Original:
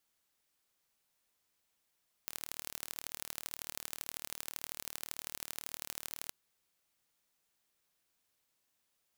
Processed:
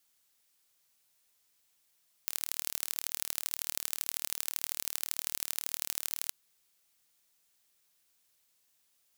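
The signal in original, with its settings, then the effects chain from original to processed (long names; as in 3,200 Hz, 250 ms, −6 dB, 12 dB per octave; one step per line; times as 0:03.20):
impulse train 38.1 per second, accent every 3, −11 dBFS 4.03 s
high-shelf EQ 2,500 Hz +8.5 dB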